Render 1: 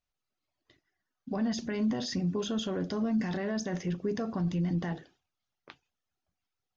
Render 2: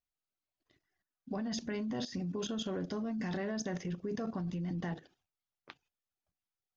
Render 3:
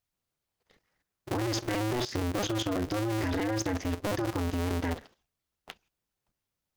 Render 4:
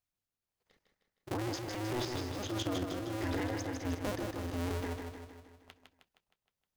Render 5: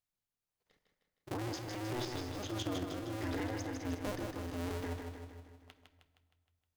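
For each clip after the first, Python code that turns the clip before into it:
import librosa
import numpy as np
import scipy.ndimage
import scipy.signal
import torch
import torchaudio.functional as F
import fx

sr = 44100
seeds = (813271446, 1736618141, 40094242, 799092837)

y1 = fx.level_steps(x, sr, step_db=12)
y2 = fx.cycle_switch(y1, sr, every=2, mode='inverted')
y2 = F.gain(torch.from_numpy(y2), 6.5).numpy()
y3 = y2 * (1.0 - 0.54 / 2.0 + 0.54 / 2.0 * np.cos(2.0 * np.pi * 1.5 * (np.arange(len(y2)) / sr)))
y3 = fx.echo_feedback(y3, sr, ms=156, feedback_pct=55, wet_db=-5)
y3 = F.gain(torch.from_numpy(y3), -5.0).numpy()
y4 = fx.room_shoebox(y3, sr, seeds[0], volume_m3=1300.0, walls='mixed', distance_m=0.41)
y4 = F.gain(torch.from_numpy(y4), -3.0).numpy()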